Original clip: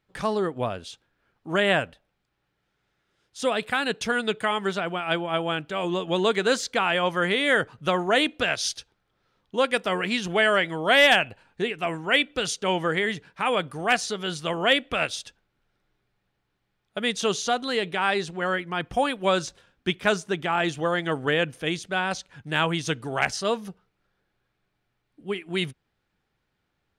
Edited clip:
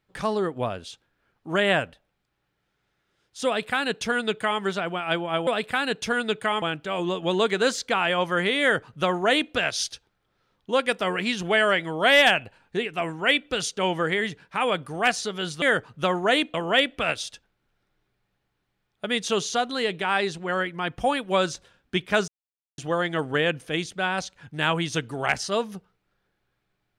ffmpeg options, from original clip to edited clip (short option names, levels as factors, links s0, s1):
-filter_complex "[0:a]asplit=7[s0][s1][s2][s3][s4][s5][s6];[s0]atrim=end=5.472[s7];[s1]atrim=start=3.458:end=4.612[s8];[s2]atrim=start=5.468:end=14.472[s9];[s3]atrim=start=7.458:end=8.382[s10];[s4]atrim=start=14.468:end=20.21,asetpts=PTS-STARTPTS,afade=t=out:st=5.738:d=0.004:c=hsin[s11];[s5]atrim=start=20.21:end=20.71,asetpts=PTS-STARTPTS,volume=0[s12];[s6]atrim=start=20.71,asetpts=PTS-STARTPTS,afade=t=in:d=0.004:c=hsin[s13];[s7][s8]acrossfade=d=0.004:c1=hsin:c2=hsin[s14];[s14][s9]acrossfade=d=0.004:c1=hsin:c2=hsin[s15];[s15][s10]acrossfade=d=0.004:c1=hsin:c2=hsin[s16];[s11][s12][s13]concat=n=3:v=0:a=1[s17];[s16][s17]acrossfade=d=0.004:c1=hsin:c2=hsin"